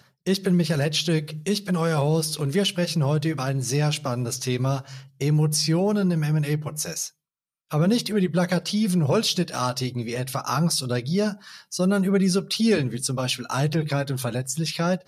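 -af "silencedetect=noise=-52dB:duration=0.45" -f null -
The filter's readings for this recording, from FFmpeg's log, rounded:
silence_start: 7.11
silence_end: 7.70 | silence_duration: 0.60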